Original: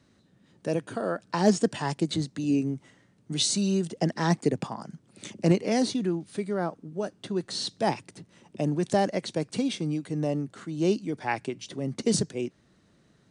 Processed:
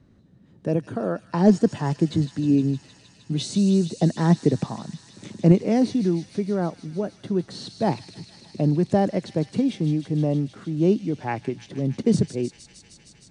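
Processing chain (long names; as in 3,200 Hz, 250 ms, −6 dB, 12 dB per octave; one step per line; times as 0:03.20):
spectral tilt −3 dB per octave
on a send: delay with a high-pass on its return 155 ms, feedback 85%, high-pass 3,200 Hz, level −7 dB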